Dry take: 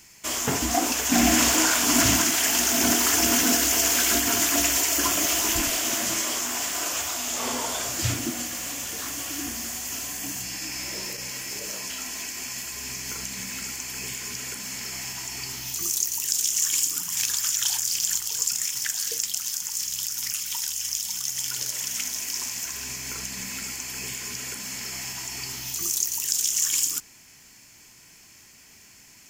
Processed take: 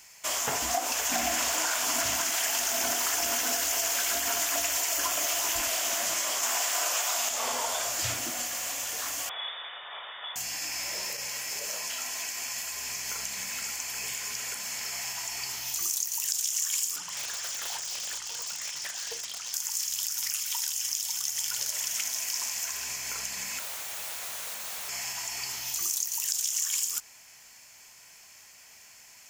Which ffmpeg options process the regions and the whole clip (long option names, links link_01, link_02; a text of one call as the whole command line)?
ffmpeg -i in.wav -filter_complex "[0:a]asettb=1/sr,asplit=3[link_01][link_02][link_03];[link_01]atrim=end=6.434[link_04];[link_02]atrim=start=6.43:end=7.29,asetpts=PTS-STARTPTS,afade=type=in:duration=0.004:curve=qsin,afade=type=out:start_time=0.856:duration=0.004:curve=qsin,highpass=280,acontrast=29[link_05];[link_03]atrim=start=7.286[link_06];[link_04][link_05]acrossfade=duration=0.004:curve1=hsin:curve2=qsin[link_07];[link_07][link_06]acrossfade=duration=0.004:curve1=qsin:curve2=hsin,asettb=1/sr,asplit=3[link_08][link_09][link_10];[link_08]atrim=end=9.294[link_11];[link_09]atrim=start=9.29:end=10.36,asetpts=PTS-STARTPTS,afade=type=in:duration=0.004:curve=qsin,afade=type=out:start_time=1.066:duration=0.004:curve=qsin,bandreject=frequency=1000:width=5.7,lowpass=frequency=3100:width_type=q:width=0.5098,lowpass=frequency=3100:width_type=q:width=0.6013,lowpass=frequency=3100:width_type=q:width=0.9,lowpass=frequency=3100:width_type=q:width=2.563,afreqshift=-3700[link_12];[link_10]atrim=start=10.356[link_13];[link_11][link_12]acrossfade=duration=0.004:curve1=hsin:curve2=qsin[link_14];[link_14][link_13]acrossfade=duration=0.004:curve1=qsin:curve2=hsin,asettb=1/sr,asplit=3[link_15][link_16][link_17];[link_15]atrim=end=16.964[link_18];[link_16]atrim=start=16.96:end=19.54,asetpts=PTS-STARTPTS,afade=type=in:duration=0.004:curve=qsin,afade=type=out:start_time=2.576:duration=0.004:curve=qsin,lowpass=5500,aeval=exprs='0.0376*(abs(mod(val(0)/0.0376+3,4)-2)-1)':channel_layout=same,equalizer=frequency=330:width=0.65:gain=4.5[link_19];[link_17]atrim=start=19.536[link_20];[link_18][link_19]acrossfade=duration=0.004:curve1=hsin:curve2=qsin[link_21];[link_21][link_20]acrossfade=duration=0.004:curve1=qsin:curve2=hsin,asettb=1/sr,asplit=3[link_22][link_23][link_24];[link_22]atrim=end=23.594[link_25];[link_23]atrim=start=23.59:end=24.89,asetpts=PTS-STARTPTS,afade=type=in:duration=0.004:curve=qsin,afade=type=out:start_time=1.296:duration=0.004:curve=qsin,asuperstop=centerf=4900:order=8:qfactor=5.1,aeval=exprs='(mod(33.5*val(0)+1,2)-1)/33.5':channel_layout=same[link_26];[link_24]atrim=start=24.886[link_27];[link_25][link_26]acrossfade=duration=0.004:curve1=hsin:curve2=qsin[link_28];[link_28][link_27]acrossfade=duration=0.004:curve1=qsin:curve2=hsin,lowshelf=frequency=440:width_type=q:width=1.5:gain=-10,acompressor=threshold=-24dB:ratio=6,volume=-1dB" out.wav